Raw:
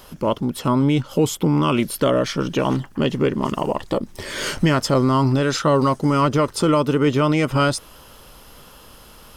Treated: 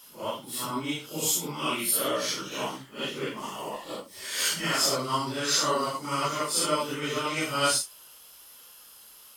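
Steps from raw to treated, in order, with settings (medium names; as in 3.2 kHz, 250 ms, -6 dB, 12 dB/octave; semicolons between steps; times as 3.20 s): phase randomisation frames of 200 ms; tilt EQ +4 dB/octave; upward expansion 1.5:1, over -31 dBFS; trim -5.5 dB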